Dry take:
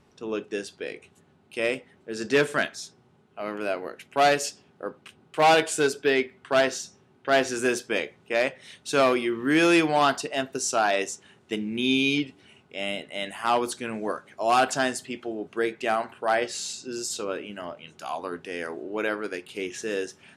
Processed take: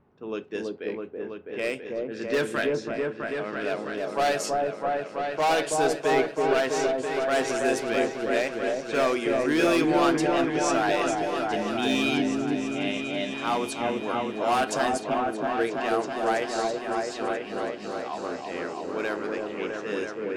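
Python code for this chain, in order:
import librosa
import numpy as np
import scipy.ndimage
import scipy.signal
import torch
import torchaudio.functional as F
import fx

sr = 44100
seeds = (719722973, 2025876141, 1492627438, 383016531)

y = fx.env_lowpass(x, sr, base_hz=1400.0, full_db=-21.5)
y = np.clip(y, -10.0 ** (-17.0 / 20.0), 10.0 ** (-17.0 / 20.0))
y = fx.echo_opening(y, sr, ms=328, hz=750, octaves=1, feedback_pct=70, wet_db=0)
y = y * 10.0 ** (-2.5 / 20.0)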